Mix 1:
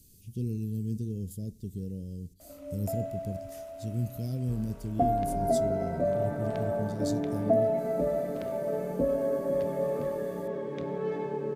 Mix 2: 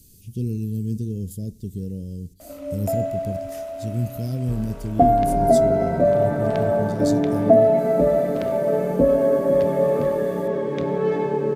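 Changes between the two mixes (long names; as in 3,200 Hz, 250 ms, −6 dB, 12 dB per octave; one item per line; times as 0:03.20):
speech +6.5 dB
background +10.5 dB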